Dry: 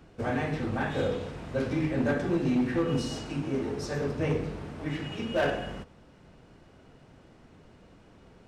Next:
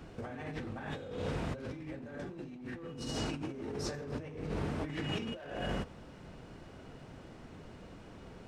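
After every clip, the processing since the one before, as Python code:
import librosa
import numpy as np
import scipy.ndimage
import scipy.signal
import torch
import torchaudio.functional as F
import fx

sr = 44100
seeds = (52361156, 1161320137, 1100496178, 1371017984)

y = fx.over_compress(x, sr, threshold_db=-38.0, ratio=-1.0)
y = F.gain(torch.from_numpy(y), -2.5).numpy()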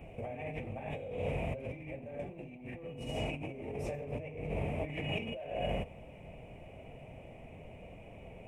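y = fx.curve_eq(x, sr, hz=(120.0, 330.0, 640.0, 1500.0, 2400.0, 4300.0, 10000.0), db=(0, -7, 6, -19, 8, -24, -3))
y = F.gain(torch.from_numpy(y), 1.5).numpy()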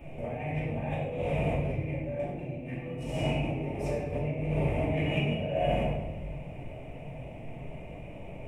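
y = fx.room_shoebox(x, sr, seeds[0], volume_m3=590.0, walls='mixed', distance_m=2.6)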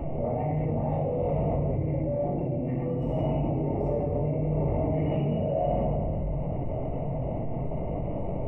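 y = scipy.signal.savgol_filter(x, 65, 4, mode='constant')
y = fx.env_flatten(y, sr, amount_pct=70)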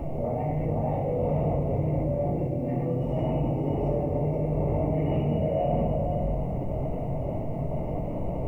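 y = x + 10.0 ** (-6.0 / 20.0) * np.pad(x, (int(476 * sr / 1000.0), 0))[:len(x)]
y = fx.quant_dither(y, sr, seeds[1], bits=12, dither='triangular')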